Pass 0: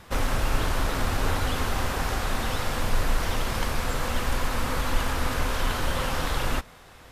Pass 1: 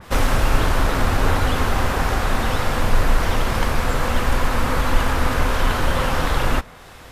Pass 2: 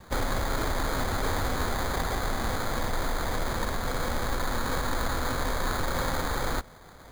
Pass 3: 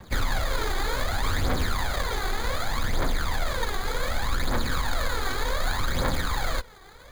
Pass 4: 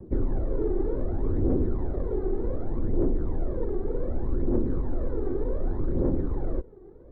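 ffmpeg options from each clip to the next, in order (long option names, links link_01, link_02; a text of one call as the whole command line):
ffmpeg -i in.wav -af "adynamicequalizer=threshold=0.00447:dfrequency=2700:dqfactor=0.7:tfrequency=2700:tqfactor=0.7:attack=5:release=100:ratio=0.375:range=2.5:mode=cutabove:tftype=highshelf,volume=7.5dB" out.wav
ffmpeg -i in.wav -filter_complex "[0:a]acrossover=split=260|1600[link_01][link_02][link_03];[link_01]alimiter=limit=-17dB:level=0:latency=1:release=70[link_04];[link_04][link_02][link_03]amix=inputs=3:normalize=0,acrusher=samples=16:mix=1:aa=0.000001,volume=-7.5dB" out.wav
ffmpeg -i in.wav -filter_complex "[0:a]aphaser=in_gain=1:out_gain=1:delay=2.7:decay=0.6:speed=0.66:type=triangular,acrossover=split=410|1100|3800[link_01][link_02][link_03][link_04];[link_03]crystalizer=i=4.5:c=0[link_05];[link_01][link_02][link_05][link_04]amix=inputs=4:normalize=0,volume=-2.5dB" out.wav
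ffmpeg -i in.wav -af "lowpass=frequency=360:width_type=q:width=4.2" out.wav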